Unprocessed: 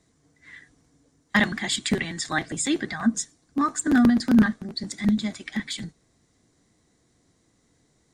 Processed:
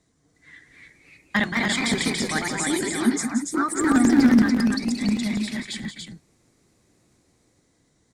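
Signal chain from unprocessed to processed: ever faster or slower copies 352 ms, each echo +2 st, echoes 2; 1.50–3.92 s: Butterworth band-stop 2.7 kHz, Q 7.5; loudspeakers at several distances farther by 61 m -9 dB, 98 m -4 dB; trim -2 dB

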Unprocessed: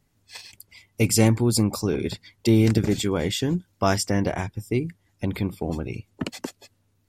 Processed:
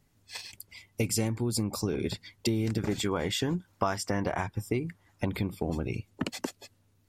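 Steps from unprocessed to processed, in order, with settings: 2.78–5.29 s: peaking EQ 1.1 kHz +9 dB 1.6 oct; compression 6:1, threshold -26 dBFS, peak gain reduction 14.5 dB

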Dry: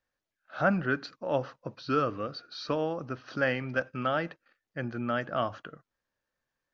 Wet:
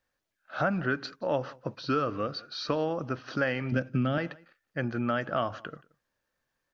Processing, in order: 3.72–4.18 s: graphic EQ 125/250/1000 Hz +10/+8/-8 dB; compression 4:1, threshold -28 dBFS, peak gain reduction 8.5 dB; on a send: delay 176 ms -24 dB; on the sum: trim +4 dB

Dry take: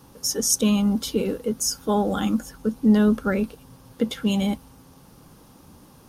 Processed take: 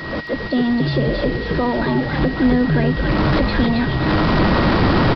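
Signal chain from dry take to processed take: jump at every zero crossing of -27 dBFS; recorder AGC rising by 53 dB/s; treble shelf 3.5 kHz -10 dB; word length cut 6-bit, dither triangular; tape speed +18%; resampled via 11.025 kHz; on a send: frequency-shifting echo 272 ms, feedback 55%, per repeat -100 Hz, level -3.5 dB; on the sum: whistle 1.9 kHz -30 dBFS

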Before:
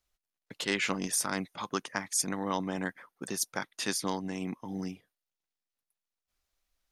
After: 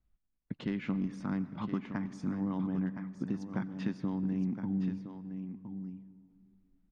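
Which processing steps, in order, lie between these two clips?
resonant low shelf 330 Hz +10.5 dB, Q 1.5; compression, threshold -29 dBFS, peak gain reduction 9.5 dB; tape spacing loss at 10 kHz 41 dB; delay 1016 ms -9 dB; on a send at -15 dB: reverberation RT60 2.5 s, pre-delay 80 ms

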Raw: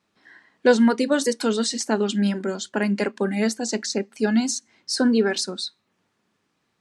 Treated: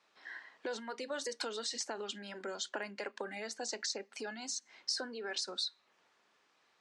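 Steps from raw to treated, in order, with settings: peak limiter -15.5 dBFS, peak gain reduction 10.5 dB; compression 12:1, threshold -34 dBFS, peak gain reduction 15.5 dB; three-band isolator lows -20 dB, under 430 Hz, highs -22 dB, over 7.9 kHz; trim +2.5 dB

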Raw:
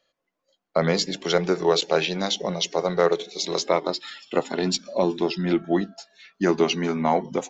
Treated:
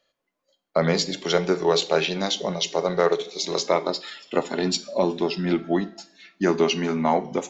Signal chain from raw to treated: two-slope reverb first 0.43 s, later 2 s, from -26 dB, DRR 11.5 dB

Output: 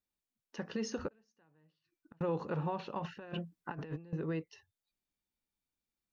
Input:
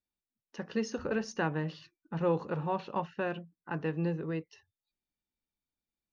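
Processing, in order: peak limiter -27 dBFS, peak gain reduction 8 dB; 1.08–2.21 s: inverted gate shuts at -40 dBFS, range -33 dB; 2.99–4.13 s: compressor with a negative ratio -41 dBFS, ratio -0.5

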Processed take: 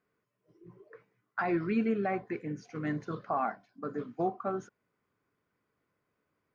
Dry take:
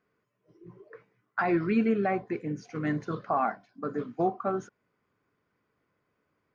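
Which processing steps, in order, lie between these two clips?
2.13–2.71 s: dynamic bell 1.7 kHz, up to +5 dB, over -53 dBFS, Q 1.4; trim -4 dB

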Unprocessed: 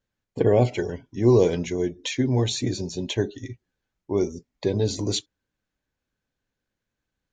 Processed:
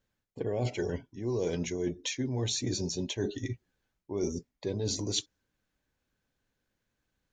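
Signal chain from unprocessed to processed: dynamic bell 5.8 kHz, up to +6 dB, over -49 dBFS, Q 2.2; reverse; compression 8:1, threshold -31 dBFS, peak gain reduction 18 dB; reverse; trim +2 dB

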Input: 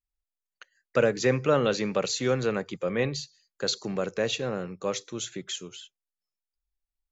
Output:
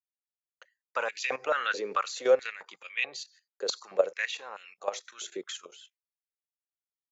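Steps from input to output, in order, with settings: level held to a coarse grid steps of 13 dB; expander -59 dBFS; step-sequenced high-pass 4.6 Hz 430–2600 Hz

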